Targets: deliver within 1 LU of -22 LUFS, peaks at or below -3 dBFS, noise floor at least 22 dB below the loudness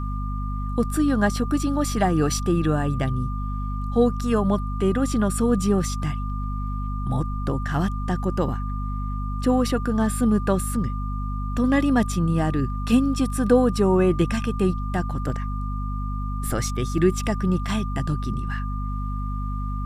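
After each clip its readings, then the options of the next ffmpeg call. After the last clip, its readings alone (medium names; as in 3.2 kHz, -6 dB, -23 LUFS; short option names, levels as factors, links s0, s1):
hum 50 Hz; highest harmonic 250 Hz; hum level -25 dBFS; steady tone 1.2 kHz; tone level -35 dBFS; loudness -24.0 LUFS; peak level -5.5 dBFS; loudness target -22.0 LUFS
-> -af "bandreject=f=50:t=h:w=6,bandreject=f=100:t=h:w=6,bandreject=f=150:t=h:w=6,bandreject=f=200:t=h:w=6,bandreject=f=250:t=h:w=6"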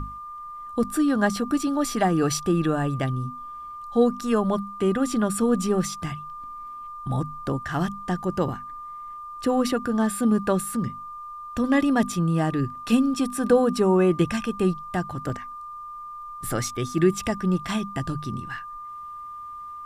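hum not found; steady tone 1.2 kHz; tone level -35 dBFS
-> -af "bandreject=f=1200:w=30"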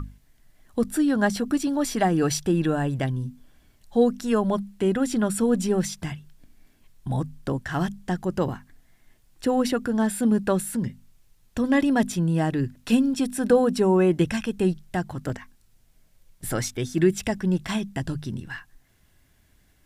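steady tone not found; loudness -24.5 LUFS; peak level -7.0 dBFS; loudness target -22.0 LUFS
-> -af "volume=1.33"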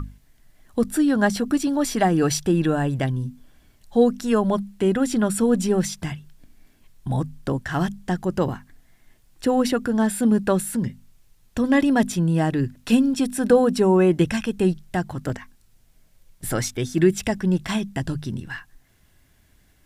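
loudness -22.0 LUFS; peak level -4.5 dBFS; noise floor -58 dBFS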